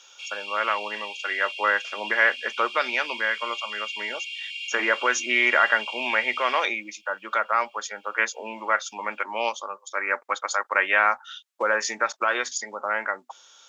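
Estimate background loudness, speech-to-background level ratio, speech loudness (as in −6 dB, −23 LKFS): −33.0 LKFS, 8.0 dB, −25.0 LKFS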